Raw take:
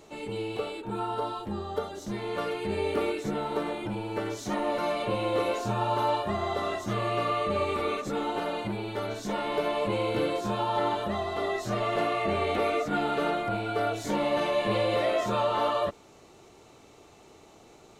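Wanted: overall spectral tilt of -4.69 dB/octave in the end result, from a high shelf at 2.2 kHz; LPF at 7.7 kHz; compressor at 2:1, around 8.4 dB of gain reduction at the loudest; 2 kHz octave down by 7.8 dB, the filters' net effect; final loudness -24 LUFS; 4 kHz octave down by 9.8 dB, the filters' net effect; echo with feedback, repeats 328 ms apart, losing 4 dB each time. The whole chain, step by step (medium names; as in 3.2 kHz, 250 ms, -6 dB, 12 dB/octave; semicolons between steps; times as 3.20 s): low-pass 7.7 kHz; peaking EQ 2 kHz -4.5 dB; treble shelf 2.2 kHz -8.5 dB; peaking EQ 4 kHz -3 dB; compression 2:1, threshold -40 dBFS; feedback delay 328 ms, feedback 63%, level -4 dB; trim +12 dB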